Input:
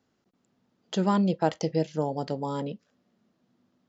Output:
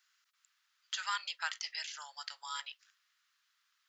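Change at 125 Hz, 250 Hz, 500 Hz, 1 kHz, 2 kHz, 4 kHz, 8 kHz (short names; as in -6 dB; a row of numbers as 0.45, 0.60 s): under -40 dB, under -40 dB, -37.5 dB, -10.5 dB, +3.5 dB, +3.0 dB, n/a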